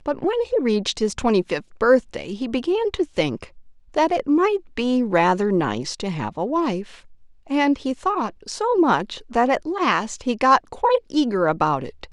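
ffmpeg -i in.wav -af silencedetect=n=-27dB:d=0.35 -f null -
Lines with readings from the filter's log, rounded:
silence_start: 3.44
silence_end: 3.94 | silence_duration: 0.51
silence_start: 6.82
silence_end: 7.50 | silence_duration: 0.68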